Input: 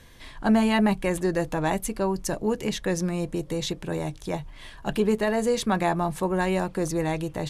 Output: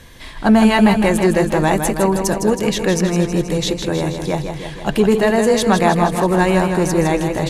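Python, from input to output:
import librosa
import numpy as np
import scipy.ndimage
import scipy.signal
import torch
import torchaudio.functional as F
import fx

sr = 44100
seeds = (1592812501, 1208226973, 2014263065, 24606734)

p1 = fx.clip_asym(x, sr, top_db=-21.0, bottom_db=-14.5)
p2 = x + (p1 * 10.0 ** (-10.0 / 20.0))
p3 = fx.echo_warbled(p2, sr, ms=160, feedback_pct=64, rate_hz=2.8, cents=50, wet_db=-7.0)
y = p3 * 10.0 ** (6.5 / 20.0)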